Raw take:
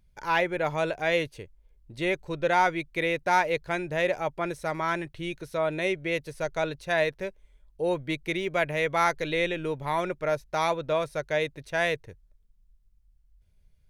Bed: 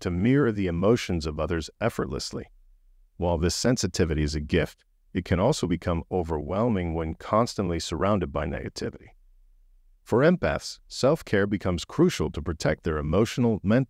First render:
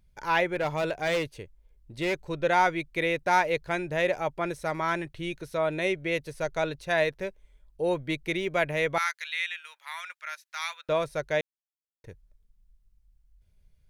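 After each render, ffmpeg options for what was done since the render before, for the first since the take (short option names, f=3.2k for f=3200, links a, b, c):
-filter_complex "[0:a]asettb=1/sr,asplit=3[a][b][c];[a]atrim=end=0.554[d];[b]atrim=start=0.55:end=2.28,asetpts=PTS-STARTPTS,afade=t=in:d=0.004:c=qsin,afade=t=out:st=1.726:d=0.004:c=qsin,asoftclip=type=hard:threshold=-22.5dB[e];[c]atrim=start=2.276[f];[d][e]acrossfade=d=0.004:c1=hsin:c2=qsin[g];[g][f]acrossfade=d=0.004:c1=qsin:c2=hsin,asettb=1/sr,asplit=3[h][i][j];[h]atrim=end=8.984[k];[i]atrim=start=8.98:end=10.89,asetpts=PTS-STARTPTS,afade=t=in:d=0.004:c=qsin,afade=t=out:st=1.906:d=0.004:c=qsin,highpass=f=1.4k:w=0.5412,highpass=f=1.4k:w=1.3066[l];[j]atrim=start=10.886[m];[k][l]acrossfade=d=0.004:c1=hsin:c2=qsin[n];[n][m]acrossfade=d=0.004:c1=qsin:c2=hsin,asplit=3[o][p][q];[o]atrim=end=11.41,asetpts=PTS-STARTPTS,afade=t=out:st=11.406:d=0.004:c=hsin[r];[p]atrim=start=11.41:end=12.04,asetpts=PTS-STARTPTS,volume=0[s];[q]atrim=start=12.04,asetpts=PTS-STARTPTS,afade=t=in:d=0.004:c=hsin[t];[r][s][t]concat=n=3:v=0:a=1"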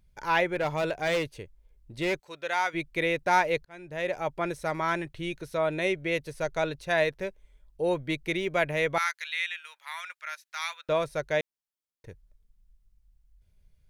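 -filter_complex "[0:a]asplit=3[a][b][c];[a]afade=t=out:st=2.18:d=0.02[d];[b]highpass=f=1.5k:p=1,afade=t=in:st=2.18:d=0.02,afade=t=out:st=2.73:d=0.02[e];[c]afade=t=in:st=2.73:d=0.02[f];[d][e][f]amix=inputs=3:normalize=0,asplit=2[g][h];[g]atrim=end=3.65,asetpts=PTS-STARTPTS,afade=t=out:st=3.646:d=0.004:c=hsin[i];[h]atrim=start=3.65,asetpts=PTS-STARTPTS,afade=t=in:d=0.69[j];[i][j]concat=n=2:v=0:a=1"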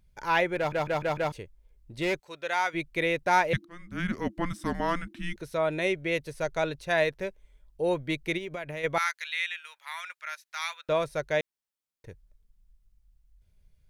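-filter_complex "[0:a]asettb=1/sr,asplit=3[a][b][c];[a]atrim=end=3.534[d];[b]atrim=start=3.53:end=5.36,asetpts=PTS-STARTPTS,afade=t=in:d=0.004:c=qsin,afade=t=out:st=1.826:d=0.004:c=qsin,afreqshift=-350[e];[c]atrim=start=5.356[f];[d][e]acrossfade=d=0.004:c1=hsin:c2=qsin[g];[g][f]acrossfade=d=0.004:c1=qsin:c2=hsin,asplit=3[h][i][j];[h]afade=t=out:st=8.37:d=0.02[k];[i]acompressor=threshold=-32dB:ratio=8:attack=3.2:release=140:knee=1:detection=peak,afade=t=in:st=8.37:d=0.02,afade=t=out:st=8.83:d=0.02[l];[j]afade=t=in:st=8.83:d=0.02[m];[k][l][m]amix=inputs=3:normalize=0,asplit=6[n][o][p][q][r][s];[n]atrim=end=0.722[t];[o]atrim=start=0.568:end=0.722[u];[p]atrim=start=0.568:end=0.722[v];[q]atrim=start=0.568:end=0.722[w];[r]atrim=start=0.568:end=0.722[x];[s]atrim=start=1.318[y];[t][u]acrossfade=d=0.004:c1=hsin:c2=hsin[z];[z][v]acrossfade=d=0.004:c1=hsin:c2=hsin[aa];[aa][w]acrossfade=d=0.004:c1=hsin:c2=hsin[ab];[ab][x]acrossfade=d=0.004:c1=hsin:c2=hsin[ac];[ac][y]acrossfade=d=0.004:c1=hsin:c2=hsin"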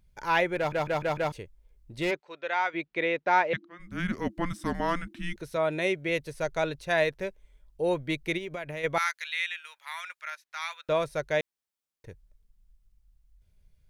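-filter_complex "[0:a]asplit=3[a][b][c];[a]afade=t=out:st=2.1:d=0.02[d];[b]highpass=240,lowpass=3.3k,afade=t=in:st=2.1:d=0.02,afade=t=out:st=3.79:d=0.02[e];[c]afade=t=in:st=3.79:d=0.02[f];[d][e][f]amix=inputs=3:normalize=0,asettb=1/sr,asplit=3[g][h][i];[g]atrim=end=5.564[j];[h]atrim=start=5.56:end=6.09,asetpts=PTS-STARTPTS,afade=t=in:d=0.004:c=qsin,afade=t=out:st=0.526:d=0.004:c=qsin,highpass=83[k];[i]atrim=start=6.086[l];[j][k]acrossfade=d=0.004:c1=hsin:c2=qsin[m];[m][l]acrossfade=d=0.004:c1=qsin:c2=hsin,asettb=1/sr,asplit=3[n][o][p];[n]atrim=end=10.304[q];[o]atrim=start=10.3:end=10.71,asetpts=PTS-STARTPTS,afade=t=in:d=0.004:c=qsin,afade=t=out:st=0.406:d=0.004:c=qsin,highshelf=f=3.9k:g=-7.5[r];[p]atrim=start=10.706[s];[q][r]acrossfade=d=0.004:c1=hsin:c2=qsin[t];[t][s]acrossfade=d=0.004:c1=qsin:c2=hsin"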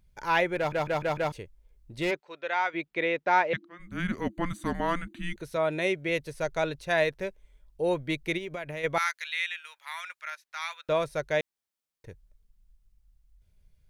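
-filter_complex "[0:a]asettb=1/sr,asplit=3[a][b][c];[a]atrim=end=3.764[d];[b]atrim=start=3.76:end=5.45,asetpts=PTS-STARTPTS,afade=t=in:d=0.004:c=qsin,afade=t=out:st=1.686:d=0.004:c=qsin,asuperstop=centerf=5300:order=20:qfactor=5.9[e];[c]atrim=start=5.446[f];[d][e]acrossfade=d=0.004:c1=hsin:c2=qsin[g];[g][f]acrossfade=d=0.004:c1=qsin:c2=hsin"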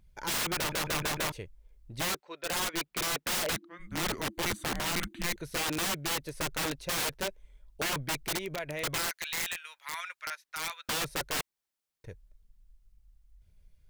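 -af "aphaser=in_gain=1:out_gain=1:delay=4:decay=0.27:speed=2:type=triangular,aeval=exprs='(mod(20*val(0)+1,2)-1)/20':c=same"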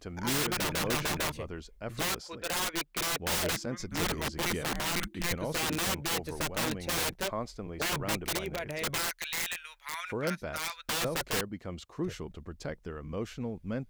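-filter_complex "[1:a]volume=-13.5dB[a];[0:a][a]amix=inputs=2:normalize=0"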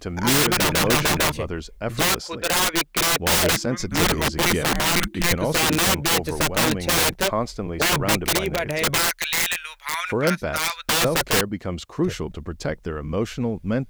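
-af "volume=11.5dB"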